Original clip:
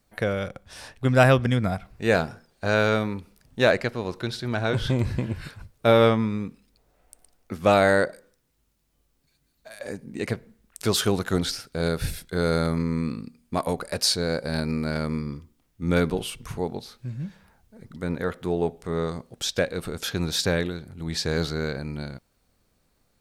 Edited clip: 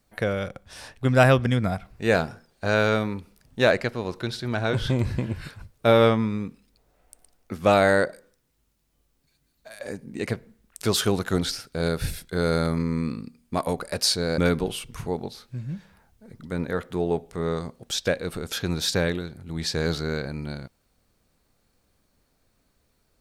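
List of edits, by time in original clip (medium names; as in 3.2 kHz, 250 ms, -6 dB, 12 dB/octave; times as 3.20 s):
14.38–15.89 s: delete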